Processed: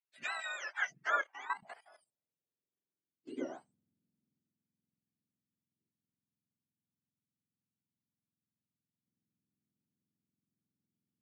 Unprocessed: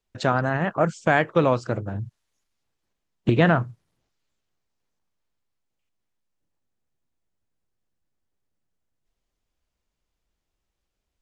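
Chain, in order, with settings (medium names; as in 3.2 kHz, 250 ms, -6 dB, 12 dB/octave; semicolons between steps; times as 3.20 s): spectrum inverted on a logarithmic axis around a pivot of 1 kHz; band-pass sweep 2.3 kHz -> 230 Hz, 0.51–3.52 s; 1.21–3.31 s: level held to a coarse grid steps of 14 dB; trim -4.5 dB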